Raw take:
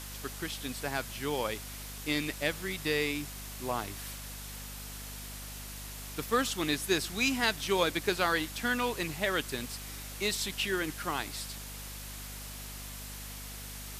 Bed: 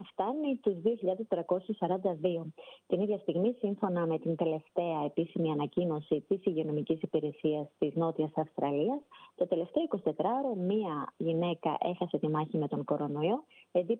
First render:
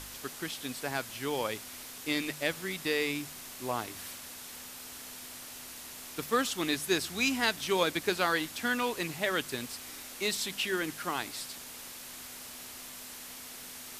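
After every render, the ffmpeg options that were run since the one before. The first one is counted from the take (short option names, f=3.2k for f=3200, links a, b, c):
-af "bandreject=f=50:t=h:w=4,bandreject=f=100:t=h:w=4,bandreject=f=150:t=h:w=4,bandreject=f=200:t=h:w=4"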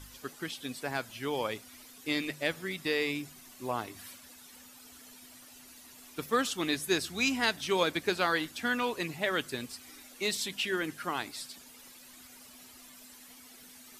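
-af "afftdn=nr=12:nf=-46"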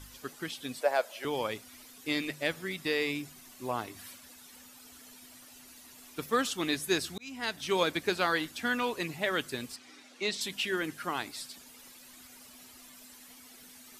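-filter_complex "[0:a]asettb=1/sr,asplit=3[a][b][c];[a]atrim=end=0.814[d];[b]atrim=start=0.81:end=1.25,asetpts=PTS-STARTPTS,afade=t=in:d=0.004:c=qsin,afade=t=out:st=0.436:d=0.004:c=qsin,highpass=f=570:t=q:w=5.8[e];[c]atrim=start=1.246[f];[d][e]acrossfade=d=0.004:c1=hsin:c2=qsin[g];[g][f]acrossfade=d=0.004:c1=qsin:c2=hsin,asettb=1/sr,asplit=3[h][i][j];[h]atrim=end=9.764[k];[i]atrim=start=9.76:end=10.41,asetpts=PTS-STARTPTS,afade=t=in:d=0.004:c=qsin,afade=t=out:st=0.646:d=0.004:c=qsin,highpass=160,lowpass=5.6k[l];[j]atrim=start=10.406[m];[k][l]acrossfade=d=0.004:c1=hsin:c2=qsin[n];[n][m]acrossfade=d=0.004:c1=qsin:c2=hsin,asplit=2[o][p];[o]atrim=end=7.18,asetpts=PTS-STARTPTS,afade=t=out:st=7.176:d=0.004:c=hsin[q];[p]atrim=start=7.18,asetpts=PTS-STARTPTS,afade=t=in:d=0.55[r];[q][r]concat=n=2:v=0:a=1"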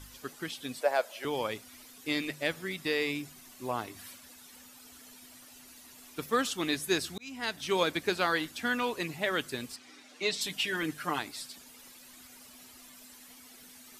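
-filter_complex "[0:a]asettb=1/sr,asplit=3[a][b][c];[a]atrim=end=10.084[d];[b]atrim=start=10.08:end=11.19,asetpts=PTS-STARTPTS,afade=t=in:d=0.004:c=qsin,afade=t=out:st=1.106:d=0.004:c=qsin,aecho=1:1:6.7:0.65,atrim=end_sample=48951[e];[c]atrim=start=11.186[f];[d][e]acrossfade=d=0.004:c1=hsin:c2=qsin[g];[g][f]acrossfade=d=0.004:c1=qsin:c2=hsin"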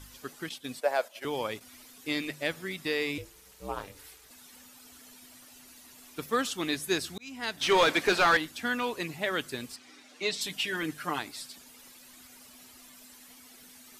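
-filter_complex "[0:a]asettb=1/sr,asplit=3[a][b][c];[a]atrim=end=0.494[d];[b]atrim=start=0.49:end=1.61,asetpts=PTS-STARTPTS,afade=t=in:d=0.004:c=qsin,afade=t=out:st=1.116:d=0.004:c=qsin,agate=range=-9dB:threshold=-46dB:ratio=16:release=100:detection=peak[e];[c]atrim=start=1.606[f];[d][e]acrossfade=d=0.004:c1=hsin:c2=qsin[g];[g][f]acrossfade=d=0.004:c1=qsin:c2=hsin,asettb=1/sr,asplit=3[h][i][j];[h]atrim=end=3.184[k];[i]atrim=start=3.18:end=4.31,asetpts=PTS-STARTPTS,afade=t=in:d=0.004:c=qsin,afade=t=out:st=1.126:d=0.004:c=qsin,aeval=exprs='val(0)*sin(2*PI*190*n/s)':c=same[l];[j]atrim=start=4.306[m];[k][l]acrossfade=d=0.004:c1=hsin:c2=qsin[n];[n][m]acrossfade=d=0.004:c1=qsin:c2=hsin,asettb=1/sr,asplit=3[o][p][q];[o]atrim=end=7.614[r];[p]atrim=start=7.61:end=8.37,asetpts=PTS-STARTPTS,afade=t=in:d=0.004:c=qsin,afade=t=out:st=0.756:d=0.004:c=qsin,asplit=2[s][t];[t]highpass=f=720:p=1,volume=21dB,asoftclip=type=tanh:threshold=-13dB[u];[s][u]amix=inputs=2:normalize=0,lowpass=f=2.9k:p=1,volume=-6dB[v];[q]atrim=start=8.366[w];[r][v]acrossfade=d=0.004:c1=hsin:c2=qsin[x];[x][w]acrossfade=d=0.004:c1=qsin:c2=hsin"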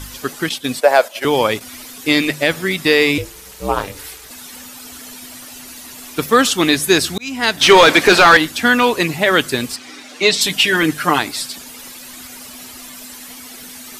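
-af "acontrast=39,alimiter=level_in=12dB:limit=-1dB:release=50:level=0:latency=1"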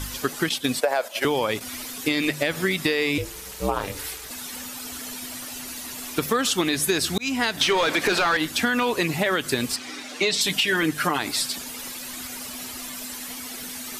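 -af "alimiter=limit=-6dB:level=0:latency=1:release=62,acompressor=threshold=-19dB:ratio=6"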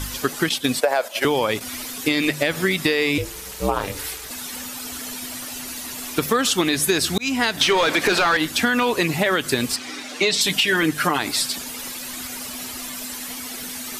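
-af "volume=3dB"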